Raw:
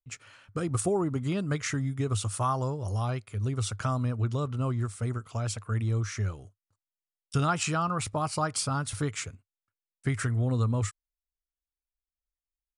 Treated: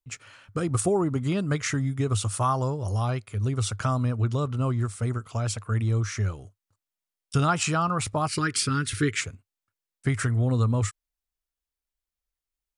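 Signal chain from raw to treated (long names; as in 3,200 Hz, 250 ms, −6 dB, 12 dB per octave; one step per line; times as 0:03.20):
0:08.28–0:09.21: drawn EQ curve 180 Hz 0 dB, 390 Hz +8 dB, 680 Hz −24 dB, 1,700 Hz +9 dB, 6,800 Hz 0 dB
level +3.5 dB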